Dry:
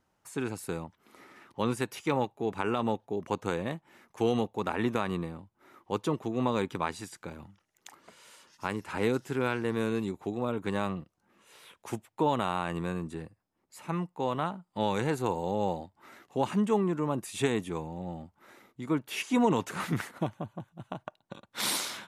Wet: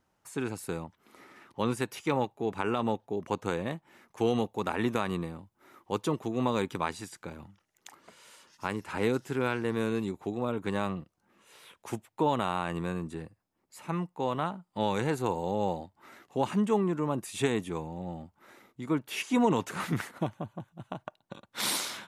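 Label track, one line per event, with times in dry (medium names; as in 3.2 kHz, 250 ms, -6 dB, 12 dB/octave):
4.400000	6.930000	treble shelf 5.1 kHz +4.5 dB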